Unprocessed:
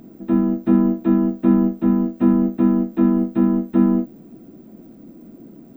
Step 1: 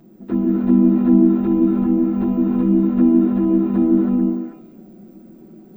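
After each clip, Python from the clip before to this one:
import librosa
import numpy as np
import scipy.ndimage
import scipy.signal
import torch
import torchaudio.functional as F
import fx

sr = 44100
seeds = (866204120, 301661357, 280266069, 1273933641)

y = fx.env_flanger(x, sr, rest_ms=6.3, full_db=-12.5)
y = fx.echo_stepped(y, sr, ms=146, hz=280.0, octaves=1.4, feedback_pct=70, wet_db=-1.0)
y = fx.rev_gated(y, sr, seeds[0], gate_ms=340, shape='rising', drr_db=-1.5)
y = y * 10.0 ** (-2.0 / 20.0)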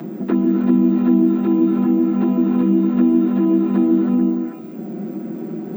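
y = scipy.signal.sosfilt(scipy.signal.ellip(4, 1.0, 40, 150.0, 'highpass', fs=sr, output='sos'), x)
y = fx.high_shelf(y, sr, hz=2100.0, db=10.0)
y = fx.band_squash(y, sr, depth_pct=70)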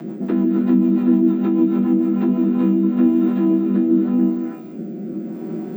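y = fx.spec_trails(x, sr, decay_s=0.35)
y = fx.rotary_switch(y, sr, hz=6.7, then_hz=0.85, switch_at_s=2.06)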